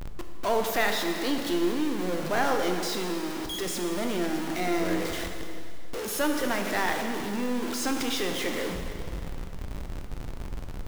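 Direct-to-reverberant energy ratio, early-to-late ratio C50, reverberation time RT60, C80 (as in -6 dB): 3.5 dB, 5.0 dB, 2.4 s, 5.5 dB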